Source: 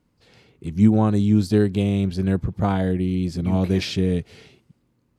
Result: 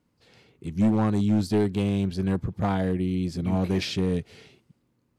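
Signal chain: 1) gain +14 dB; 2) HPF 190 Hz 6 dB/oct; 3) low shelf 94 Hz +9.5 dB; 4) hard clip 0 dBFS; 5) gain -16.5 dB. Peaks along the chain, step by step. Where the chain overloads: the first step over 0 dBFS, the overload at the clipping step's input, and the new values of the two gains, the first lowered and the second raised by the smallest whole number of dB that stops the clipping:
+9.0, +6.0, +8.5, 0.0, -16.5 dBFS; step 1, 8.5 dB; step 1 +5 dB, step 5 -7.5 dB

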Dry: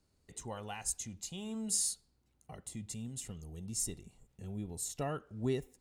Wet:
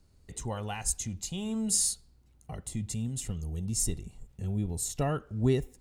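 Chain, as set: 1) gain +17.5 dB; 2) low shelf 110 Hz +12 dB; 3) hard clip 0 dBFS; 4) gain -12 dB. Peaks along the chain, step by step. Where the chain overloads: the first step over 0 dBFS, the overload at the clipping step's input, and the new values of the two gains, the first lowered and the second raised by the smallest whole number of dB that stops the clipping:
-2.5, -2.0, -2.0, -14.0 dBFS; no overload

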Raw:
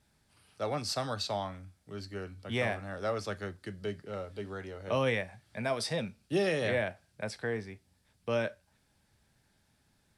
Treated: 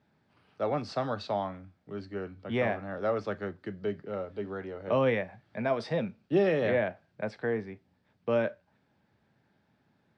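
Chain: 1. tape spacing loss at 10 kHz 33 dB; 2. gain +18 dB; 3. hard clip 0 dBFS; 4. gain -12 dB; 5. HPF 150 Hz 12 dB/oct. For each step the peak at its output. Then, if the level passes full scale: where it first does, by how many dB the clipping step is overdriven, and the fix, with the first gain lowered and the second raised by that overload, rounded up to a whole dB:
-20.0, -2.0, -2.0, -14.0, -15.0 dBFS; no overload

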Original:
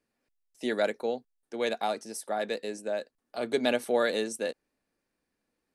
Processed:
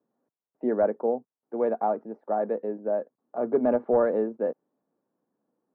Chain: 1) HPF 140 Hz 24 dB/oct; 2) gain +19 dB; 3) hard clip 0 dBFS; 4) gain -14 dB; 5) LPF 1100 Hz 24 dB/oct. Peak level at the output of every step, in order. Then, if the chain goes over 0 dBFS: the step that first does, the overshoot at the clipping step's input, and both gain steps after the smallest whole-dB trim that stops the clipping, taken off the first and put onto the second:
-13.0, +6.0, 0.0, -14.0, -12.5 dBFS; step 2, 6.0 dB; step 2 +13 dB, step 4 -8 dB

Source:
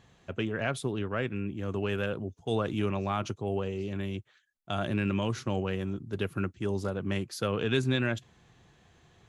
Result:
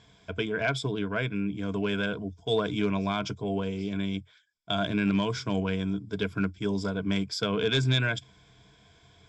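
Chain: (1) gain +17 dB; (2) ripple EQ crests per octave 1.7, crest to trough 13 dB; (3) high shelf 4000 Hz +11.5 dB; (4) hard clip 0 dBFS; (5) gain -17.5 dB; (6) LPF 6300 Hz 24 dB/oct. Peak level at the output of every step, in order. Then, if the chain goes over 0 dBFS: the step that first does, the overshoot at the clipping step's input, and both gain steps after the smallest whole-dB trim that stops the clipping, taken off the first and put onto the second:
+2.5, +6.0, +7.5, 0.0, -17.5, -16.0 dBFS; step 1, 7.5 dB; step 1 +9 dB, step 5 -9.5 dB

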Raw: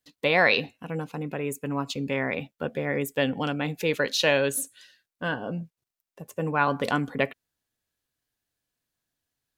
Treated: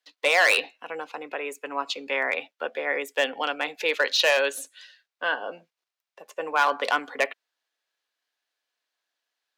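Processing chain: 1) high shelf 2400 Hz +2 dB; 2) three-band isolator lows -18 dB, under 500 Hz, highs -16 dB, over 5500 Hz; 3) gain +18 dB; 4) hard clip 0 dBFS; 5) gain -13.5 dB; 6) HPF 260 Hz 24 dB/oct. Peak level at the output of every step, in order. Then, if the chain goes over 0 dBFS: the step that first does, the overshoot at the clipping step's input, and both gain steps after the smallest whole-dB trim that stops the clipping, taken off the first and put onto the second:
-5.5, -8.0, +10.0, 0.0, -13.5, -9.0 dBFS; step 3, 10.0 dB; step 3 +8 dB, step 5 -3.5 dB

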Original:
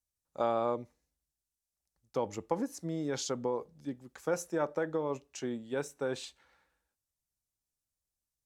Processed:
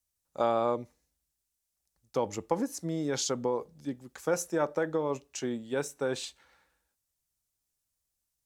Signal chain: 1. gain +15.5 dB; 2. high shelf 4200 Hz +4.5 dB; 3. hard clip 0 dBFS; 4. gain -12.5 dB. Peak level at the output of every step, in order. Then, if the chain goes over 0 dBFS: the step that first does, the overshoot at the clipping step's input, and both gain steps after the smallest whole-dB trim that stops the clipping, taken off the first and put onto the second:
-2.5, -2.5, -2.5, -15.0 dBFS; no overload

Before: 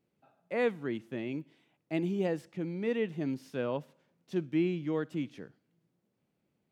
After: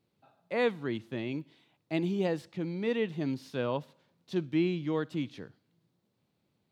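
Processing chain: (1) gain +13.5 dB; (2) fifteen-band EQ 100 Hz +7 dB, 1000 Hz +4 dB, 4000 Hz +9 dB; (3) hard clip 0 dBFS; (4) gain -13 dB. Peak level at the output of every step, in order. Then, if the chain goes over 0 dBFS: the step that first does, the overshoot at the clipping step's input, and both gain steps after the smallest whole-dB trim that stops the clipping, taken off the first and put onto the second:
-4.5, -4.0, -4.0, -17.0 dBFS; no overload

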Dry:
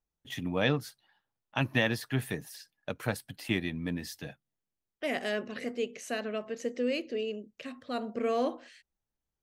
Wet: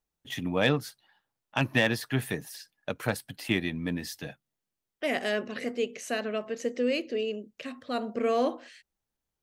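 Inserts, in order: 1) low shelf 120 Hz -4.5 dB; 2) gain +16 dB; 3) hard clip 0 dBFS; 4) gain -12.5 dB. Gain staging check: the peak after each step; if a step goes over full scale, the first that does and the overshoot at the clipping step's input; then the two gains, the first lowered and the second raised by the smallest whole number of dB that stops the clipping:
-13.0, +3.0, 0.0, -12.5 dBFS; step 2, 3.0 dB; step 2 +13 dB, step 4 -9.5 dB

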